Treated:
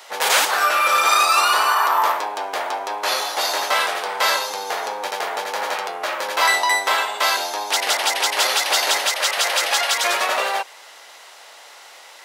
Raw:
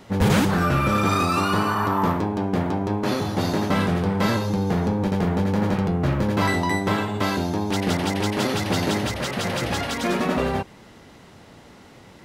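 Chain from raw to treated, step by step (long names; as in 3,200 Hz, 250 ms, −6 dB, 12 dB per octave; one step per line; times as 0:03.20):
high-pass filter 610 Hz 24 dB per octave
high-shelf EQ 2,500 Hz +8 dB
level +5.5 dB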